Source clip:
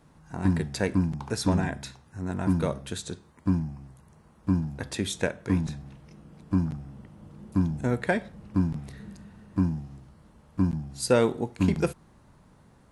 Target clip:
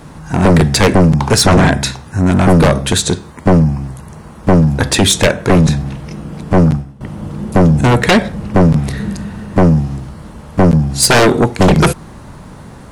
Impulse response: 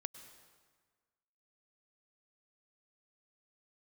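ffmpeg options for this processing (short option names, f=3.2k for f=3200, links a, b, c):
-filter_complex "[0:a]acontrast=81,aeval=exprs='0.596*sin(PI/2*3.98*val(0)/0.596)':c=same,asettb=1/sr,asplit=3[a][b][c];[a]atrim=end=6.534[d];[b]atrim=start=6.53:end=7.01,asetpts=PTS-STARTPTS,afade=t=in:d=0.004:c=qsin,afade=t=out:st=0.476:d=0.004:c=qsin,agate=range=-33dB:threshold=-9dB:ratio=3:detection=peak[e];[c]atrim=start=7.006[f];[d][e]acrossfade=d=0.004:c1=hsin:c2=qsin[g];[g][f]acrossfade=d=0.004:c1=qsin:c2=hsin"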